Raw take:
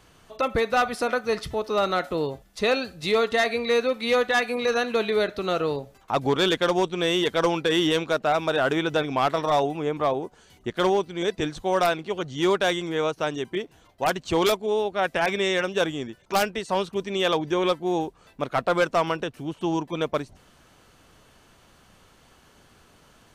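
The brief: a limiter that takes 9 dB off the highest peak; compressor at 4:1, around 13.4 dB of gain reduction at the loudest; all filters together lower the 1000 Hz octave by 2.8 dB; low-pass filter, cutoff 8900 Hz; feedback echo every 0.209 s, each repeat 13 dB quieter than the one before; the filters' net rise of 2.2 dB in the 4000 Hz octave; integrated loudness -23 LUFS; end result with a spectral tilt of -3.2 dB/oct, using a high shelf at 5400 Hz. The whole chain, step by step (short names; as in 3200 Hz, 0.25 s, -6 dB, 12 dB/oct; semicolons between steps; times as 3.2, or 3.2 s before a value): LPF 8900 Hz; bell 1000 Hz -4 dB; bell 4000 Hz +5.5 dB; high shelf 5400 Hz -7.5 dB; compressor 4:1, threshold -35 dBFS; limiter -30.5 dBFS; feedback echo 0.209 s, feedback 22%, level -13 dB; gain +17 dB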